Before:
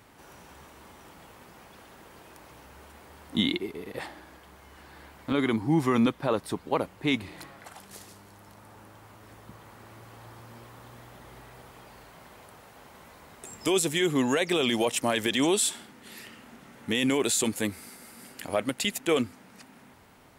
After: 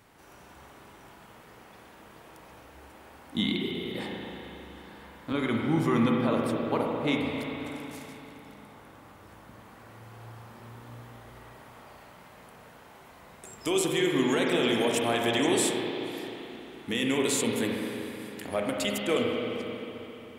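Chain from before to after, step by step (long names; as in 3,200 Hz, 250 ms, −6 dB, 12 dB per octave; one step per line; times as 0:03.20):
spring reverb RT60 3.4 s, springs 34/44 ms, chirp 60 ms, DRR −1 dB
level −3.5 dB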